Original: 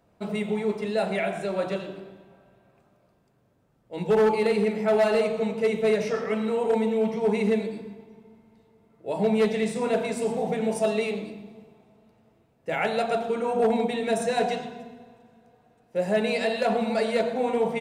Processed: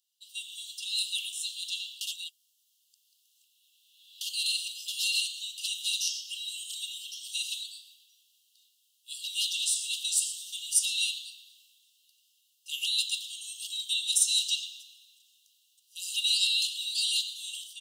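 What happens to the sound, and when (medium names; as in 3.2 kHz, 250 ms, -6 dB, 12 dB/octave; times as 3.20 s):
2.01–4.21 s: reverse
whole clip: Chebyshev high-pass 2.8 kHz, order 10; treble shelf 3.6 kHz +9 dB; level rider gain up to 13 dB; trim -4.5 dB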